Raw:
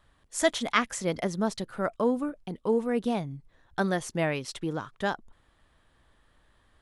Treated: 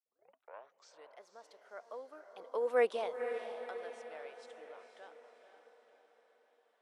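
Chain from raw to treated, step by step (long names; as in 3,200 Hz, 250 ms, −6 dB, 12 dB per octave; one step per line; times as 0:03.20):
turntable start at the beginning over 1.27 s
camcorder AGC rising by 11 dB per second
source passing by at 0:02.80, 15 m/s, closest 1.1 metres
Chebyshev high-pass filter 500 Hz, order 3
high-shelf EQ 6,800 Hz −10.5 dB
on a send: feedback delay with all-pass diffusion 497 ms, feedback 52%, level −8 dB
on the sum: level +2.5 dB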